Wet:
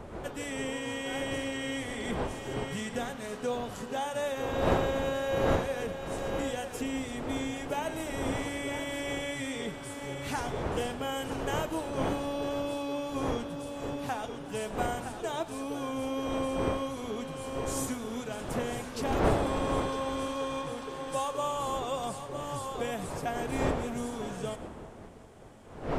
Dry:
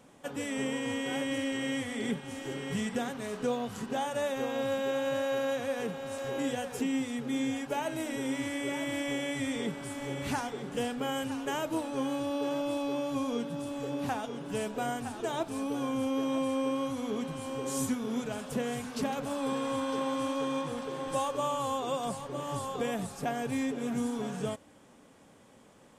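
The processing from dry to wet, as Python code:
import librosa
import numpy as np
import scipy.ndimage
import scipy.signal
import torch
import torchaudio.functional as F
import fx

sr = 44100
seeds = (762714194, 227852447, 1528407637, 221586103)

p1 = fx.dmg_wind(x, sr, seeds[0], corner_hz=520.0, level_db=-36.0)
p2 = fx.peak_eq(p1, sr, hz=220.0, db=-5.0, octaves=1.2)
y = p2 + fx.echo_split(p2, sr, split_hz=750.0, low_ms=362, high_ms=110, feedback_pct=52, wet_db=-16.0, dry=0)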